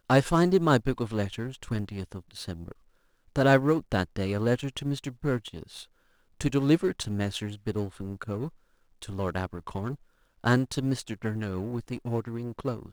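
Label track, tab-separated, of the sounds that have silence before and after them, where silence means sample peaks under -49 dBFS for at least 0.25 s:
3.280000	5.850000	sound
6.410000	8.490000	sound
9.020000	9.960000	sound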